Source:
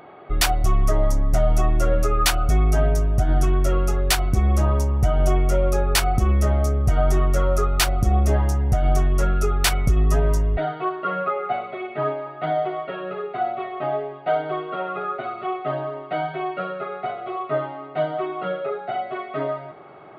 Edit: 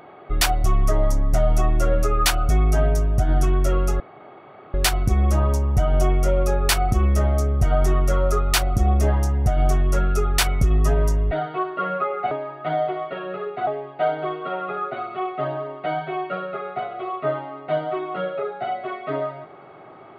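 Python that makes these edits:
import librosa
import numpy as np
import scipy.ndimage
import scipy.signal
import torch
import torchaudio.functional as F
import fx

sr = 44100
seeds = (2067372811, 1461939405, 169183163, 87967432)

y = fx.edit(x, sr, fx.insert_room_tone(at_s=4.0, length_s=0.74),
    fx.cut(start_s=11.57, length_s=0.51),
    fx.cut(start_s=13.44, length_s=0.5), tone=tone)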